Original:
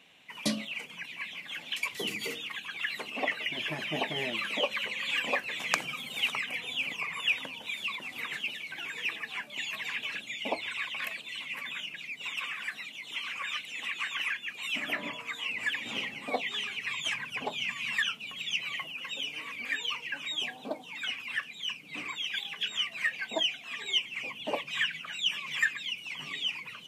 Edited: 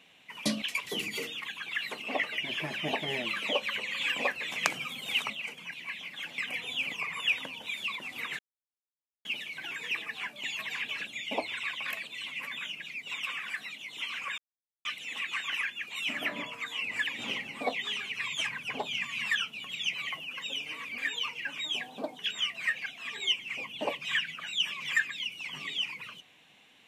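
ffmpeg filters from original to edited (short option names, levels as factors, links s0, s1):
-filter_complex "[0:a]asplit=8[s0][s1][s2][s3][s4][s5][s6][s7];[s0]atrim=end=0.622[s8];[s1]atrim=start=1.698:end=6.382[s9];[s2]atrim=start=0.618:end=1.702[s10];[s3]atrim=start=6.378:end=8.39,asetpts=PTS-STARTPTS,afade=t=out:st=2.008:d=0.004:c=hsin,apad=pad_dur=0.86[s11];[s4]atrim=start=8.39:end=13.52,asetpts=PTS-STARTPTS,afade=t=in:d=0.004:c=hsin,afade=t=out:st=5.126:d=0.004:c=hsin,apad=pad_dur=0.47[s12];[s5]atrim=start=13.52:end=20.862,asetpts=PTS-STARTPTS,afade=t=in:d=0.004:c=hsin[s13];[s6]atrim=start=22.558:end=23.232[s14];[s7]atrim=start=23.518[s15];[s8][s9]acrossfade=d=0.004:c1=hsin:c2=hsin[s16];[s16][s10]acrossfade=d=0.004:c1=hsin:c2=hsin[s17];[s11][s12][s13]concat=n=3:v=0:a=1[s18];[s17][s18]acrossfade=d=0.004:c1=hsin:c2=hsin[s19];[s19][s14]acrossfade=d=0.004:c1=hsin:c2=hsin[s20];[s20][s15]acrossfade=d=0.004:c1=hsin:c2=hsin"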